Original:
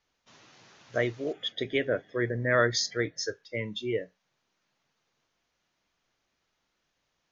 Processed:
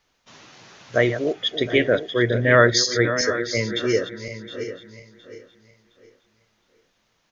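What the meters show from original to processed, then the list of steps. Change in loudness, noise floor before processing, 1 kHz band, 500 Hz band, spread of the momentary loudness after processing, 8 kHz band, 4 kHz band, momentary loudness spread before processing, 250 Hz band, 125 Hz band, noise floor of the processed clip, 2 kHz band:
+9.0 dB, −79 dBFS, +9.5 dB, +9.5 dB, 17 LU, can't be measured, +9.5 dB, 11 LU, +10.0 dB, +10.0 dB, −69 dBFS, +9.5 dB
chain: feedback delay that plays each chunk backwards 357 ms, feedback 52%, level −10.5 dB
on a send: single-tap delay 742 ms −13.5 dB
on the sum: level +9 dB

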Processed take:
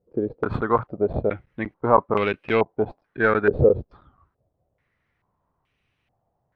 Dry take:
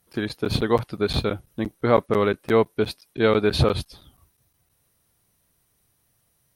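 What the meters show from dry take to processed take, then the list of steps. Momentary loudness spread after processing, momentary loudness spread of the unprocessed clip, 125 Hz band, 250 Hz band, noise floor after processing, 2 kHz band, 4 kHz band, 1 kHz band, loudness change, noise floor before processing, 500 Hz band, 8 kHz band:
10 LU, 10 LU, −3.0 dB, −2.5 dB, −75 dBFS, +3.5 dB, −13.5 dB, +3.5 dB, +0.5 dB, −68 dBFS, +0.5 dB, below −25 dB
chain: stylus tracing distortion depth 0.063 ms
low-pass on a step sequencer 2.3 Hz 480–2,600 Hz
level −3 dB

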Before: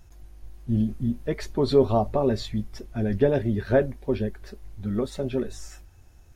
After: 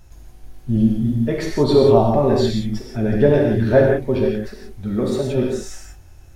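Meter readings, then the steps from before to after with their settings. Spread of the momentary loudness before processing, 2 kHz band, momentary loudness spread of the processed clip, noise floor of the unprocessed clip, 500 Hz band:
14 LU, +8.0 dB, 13 LU, −51 dBFS, +8.0 dB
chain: reverb whose tail is shaped and stops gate 200 ms flat, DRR −1.5 dB
level +4 dB

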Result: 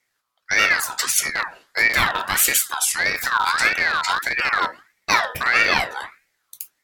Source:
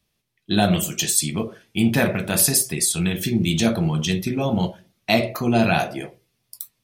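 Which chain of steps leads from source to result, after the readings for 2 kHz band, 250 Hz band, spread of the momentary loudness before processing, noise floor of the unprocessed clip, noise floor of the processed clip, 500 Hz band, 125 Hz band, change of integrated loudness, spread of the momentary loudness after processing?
+11.0 dB, −18.5 dB, 11 LU, −73 dBFS, −74 dBFS, −8.0 dB, −18.0 dB, +2.0 dB, 10 LU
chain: loose part that buzzes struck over −23 dBFS, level −17 dBFS
ring modulator whose carrier an LFO sweeps 1,600 Hz, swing 30%, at 1.6 Hz
level +3 dB

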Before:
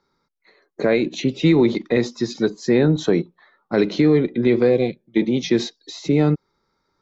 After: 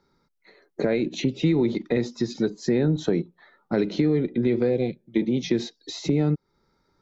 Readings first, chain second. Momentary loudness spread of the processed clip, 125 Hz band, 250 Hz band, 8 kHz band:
7 LU, −3.5 dB, −5.0 dB, can't be measured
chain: low-shelf EQ 360 Hz +6.5 dB
notch filter 1,100 Hz, Q 8.9
downward compressor 2 to 1, threshold −26 dBFS, peak gain reduction 10.5 dB

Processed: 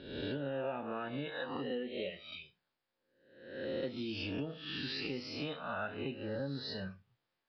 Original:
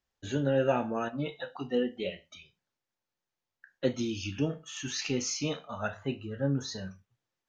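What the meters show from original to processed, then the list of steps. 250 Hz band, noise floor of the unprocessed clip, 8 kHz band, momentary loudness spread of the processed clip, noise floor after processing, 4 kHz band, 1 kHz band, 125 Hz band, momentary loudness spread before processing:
−7.5 dB, below −85 dBFS, can't be measured, 9 LU, below −85 dBFS, −3.0 dB, −6.0 dB, −9.5 dB, 11 LU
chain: peak hold with a rise ahead of every peak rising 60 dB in 0.78 s
low-shelf EQ 160 Hz −5 dB
downward compressor 5 to 1, threshold −37 dBFS, peak gain reduction 15 dB
downsampling to 11,025 Hz
level +1 dB

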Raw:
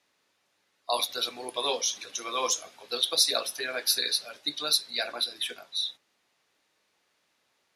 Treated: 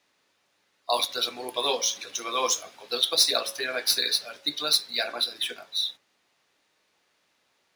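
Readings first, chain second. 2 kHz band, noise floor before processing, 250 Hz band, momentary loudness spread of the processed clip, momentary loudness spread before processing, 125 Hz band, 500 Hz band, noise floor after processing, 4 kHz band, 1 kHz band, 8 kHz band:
+3.0 dB, −74 dBFS, +3.0 dB, 9 LU, 9 LU, can't be measured, +3.0 dB, −71 dBFS, +2.5 dB, +3.0 dB, +1.5 dB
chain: running median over 3 samples
hum removal 110.3 Hz, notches 21
level +3 dB

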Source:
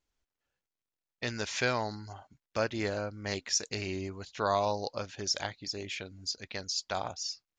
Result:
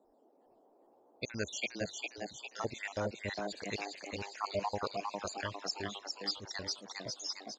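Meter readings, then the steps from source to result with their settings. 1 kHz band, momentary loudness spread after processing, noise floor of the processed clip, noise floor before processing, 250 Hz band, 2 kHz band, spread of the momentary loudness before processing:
−5.0 dB, 5 LU, −68 dBFS, below −85 dBFS, −5.0 dB, −4.5 dB, 9 LU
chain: time-frequency cells dropped at random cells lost 70%
noise in a band 240–780 Hz −68 dBFS
echo with shifted repeats 405 ms, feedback 54%, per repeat +98 Hz, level −3.5 dB

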